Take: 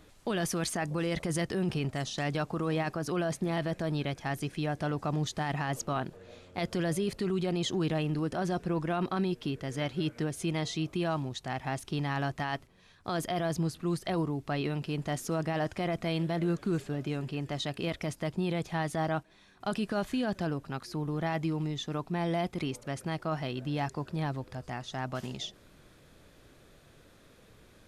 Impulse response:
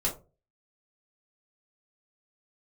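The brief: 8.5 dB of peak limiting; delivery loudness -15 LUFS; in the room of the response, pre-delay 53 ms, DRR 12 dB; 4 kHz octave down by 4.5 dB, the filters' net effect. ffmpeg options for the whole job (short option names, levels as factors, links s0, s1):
-filter_complex "[0:a]equalizer=f=4000:t=o:g=-6,alimiter=level_in=2.11:limit=0.0631:level=0:latency=1,volume=0.473,asplit=2[s0][s1];[1:a]atrim=start_sample=2205,adelay=53[s2];[s1][s2]afir=irnorm=-1:irlink=0,volume=0.119[s3];[s0][s3]amix=inputs=2:normalize=0,volume=16.8"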